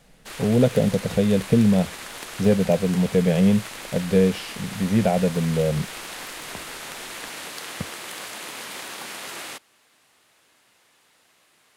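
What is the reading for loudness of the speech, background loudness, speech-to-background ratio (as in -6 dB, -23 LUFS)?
-21.5 LUFS, -34.5 LUFS, 13.0 dB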